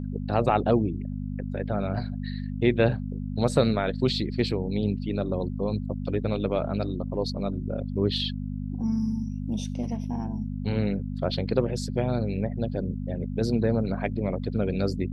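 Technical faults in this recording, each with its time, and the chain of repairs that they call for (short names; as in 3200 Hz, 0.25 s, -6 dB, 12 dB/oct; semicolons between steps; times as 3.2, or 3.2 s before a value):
hum 50 Hz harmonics 5 -32 dBFS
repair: de-hum 50 Hz, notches 5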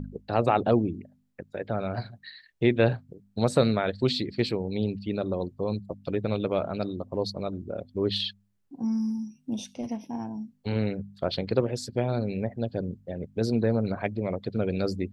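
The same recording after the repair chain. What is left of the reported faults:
none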